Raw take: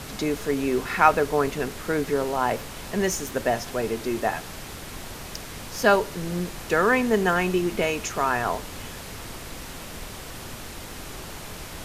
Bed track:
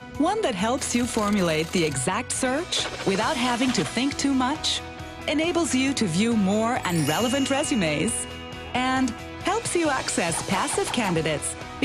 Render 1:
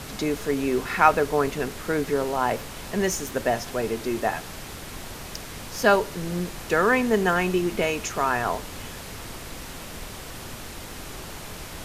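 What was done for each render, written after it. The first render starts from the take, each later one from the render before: no audible change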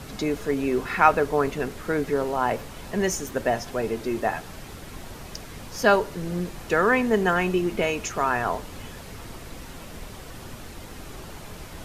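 noise reduction 6 dB, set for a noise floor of -39 dBFS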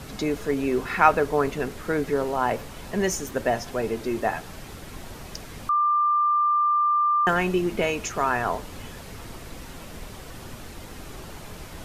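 5.69–7.27 s: bleep 1.19 kHz -18 dBFS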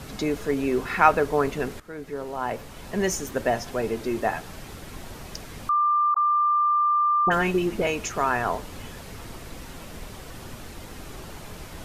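1.80–3.10 s: fade in, from -17 dB; 6.14–7.87 s: phase dispersion highs, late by 47 ms, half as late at 1.1 kHz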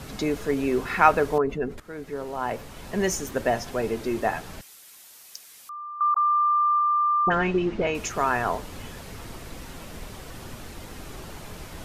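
1.38–1.78 s: spectral contrast enhancement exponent 1.6; 4.61–6.01 s: differentiator; 6.79–7.95 s: distance through air 150 m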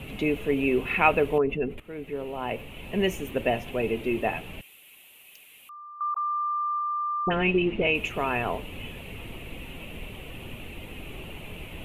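FFT filter 480 Hz 0 dB, 1.6 kHz -9 dB, 2.7 kHz +11 dB, 5.1 kHz -22 dB, 11 kHz -4 dB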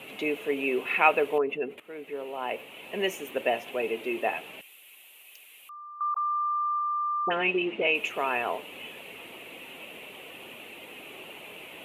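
high-pass 400 Hz 12 dB/octave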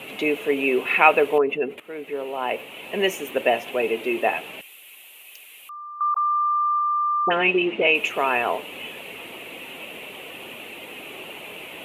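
trim +6.5 dB; peak limiter -1 dBFS, peak gain reduction 1 dB

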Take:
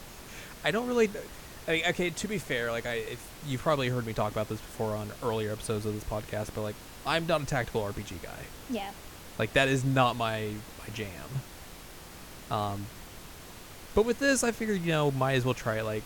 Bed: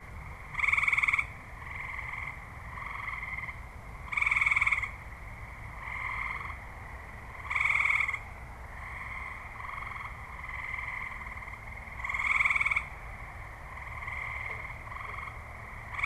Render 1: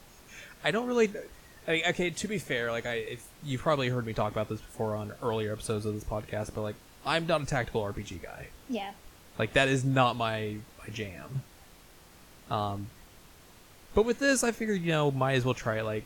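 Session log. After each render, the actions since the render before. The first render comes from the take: noise print and reduce 8 dB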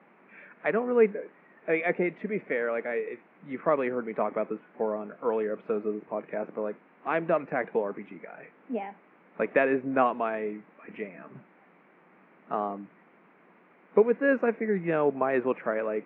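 Chebyshev band-pass 180–2300 Hz, order 4; dynamic bell 470 Hz, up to +5 dB, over -39 dBFS, Q 1.1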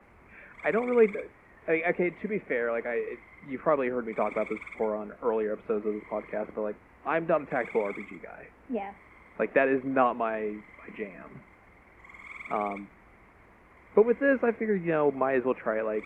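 add bed -16.5 dB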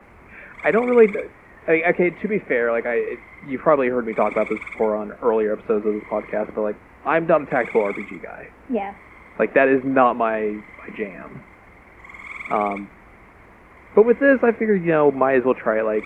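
trim +9 dB; peak limiter -3 dBFS, peak gain reduction 2 dB

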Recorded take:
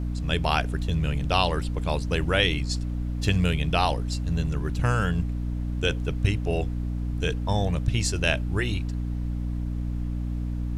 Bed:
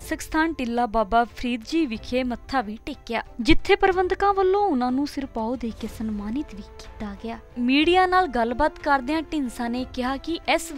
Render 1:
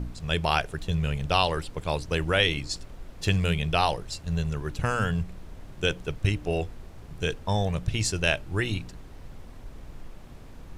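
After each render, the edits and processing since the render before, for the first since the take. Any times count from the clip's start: de-hum 60 Hz, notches 5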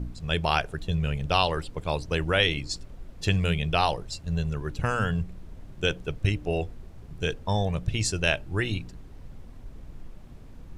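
noise reduction 6 dB, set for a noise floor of -45 dBFS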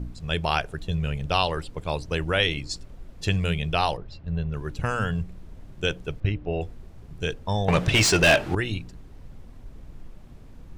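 3.97–4.54 s: distance through air 290 m; 6.20–6.61 s: distance through air 260 m; 7.68–8.55 s: overdrive pedal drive 29 dB, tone 3.3 kHz, clips at -8 dBFS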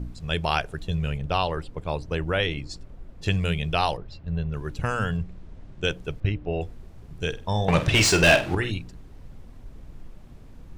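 1.17–3.26 s: treble shelf 2.9 kHz -9 dB; 5.17–5.84 s: distance through air 64 m; 7.28–8.71 s: flutter echo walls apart 8.1 m, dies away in 0.28 s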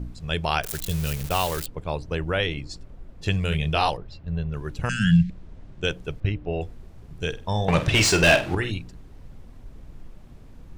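0.63–1.66 s: zero-crossing glitches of -20 dBFS; 3.49–3.90 s: doubling 26 ms -4 dB; 4.89–5.30 s: FFT filter 110 Hz 0 dB, 180 Hz +15 dB, 480 Hz -29 dB, 1.1 kHz -30 dB, 1.6 kHz +6 dB, 4.2 kHz +13 dB, 9.3 kHz +6 dB, 14 kHz -21 dB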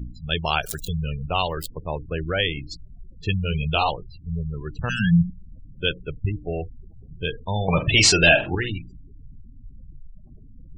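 spectral gate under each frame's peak -20 dB strong; dynamic bell 4.6 kHz, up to +7 dB, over -40 dBFS, Q 0.71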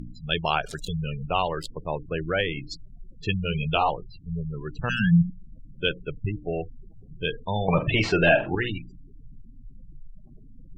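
peaking EQ 67 Hz -13.5 dB 0.77 oct; low-pass that closes with the level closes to 1.7 kHz, closed at -17.5 dBFS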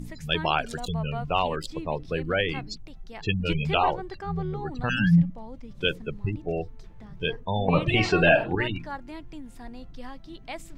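add bed -16 dB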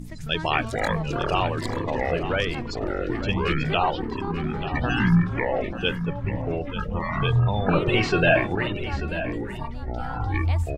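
ever faster or slower copies 101 ms, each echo -6 st, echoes 3; on a send: delay 888 ms -11.5 dB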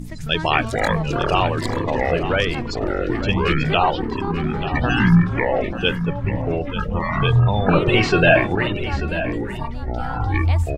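trim +5 dB

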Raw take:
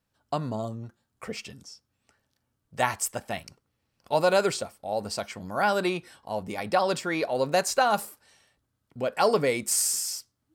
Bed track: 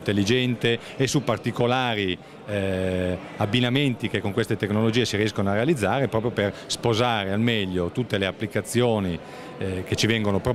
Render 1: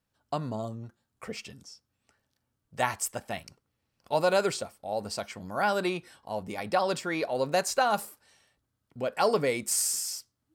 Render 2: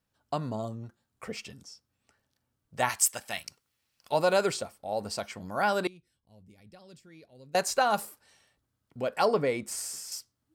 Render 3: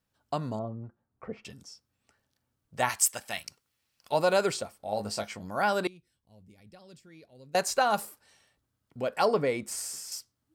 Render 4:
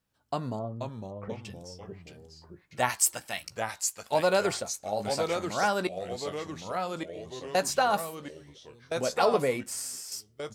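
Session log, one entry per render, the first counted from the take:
trim -2.5 dB
2.89–4.12 s: tilt shelf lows -8 dB, about 1.2 kHz; 5.87–7.55 s: amplifier tone stack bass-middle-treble 10-0-1; 9.25–10.12 s: treble shelf 3.5 kHz -10.5 dB
0.59–1.45 s: low-pass 1.2 kHz; 4.78–5.37 s: doubling 19 ms -5.5 dB
doubling 16 ms -13.5 dB; ever faster or slower copies 443 ms, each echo -2 st, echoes 3, each echo -6 dB

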